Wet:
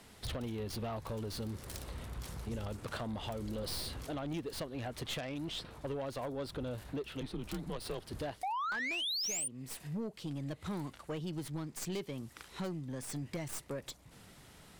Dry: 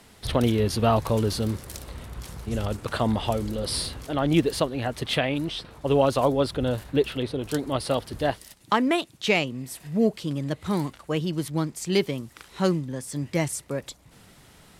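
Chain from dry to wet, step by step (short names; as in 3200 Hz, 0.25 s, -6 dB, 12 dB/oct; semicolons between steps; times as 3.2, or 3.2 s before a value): tracing distortion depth 0.073 ms; 8.43–9.48 painted sound rise 720–9600 Hz -15 dBFS; compressor 6:1, threshold -29 dBFS, peak gain reduction 16 dB; soft clip -27.5 dBFS, distortion -14 dB; 7.21–8.03 frequency shift -110 Hz; gain -4.5 dB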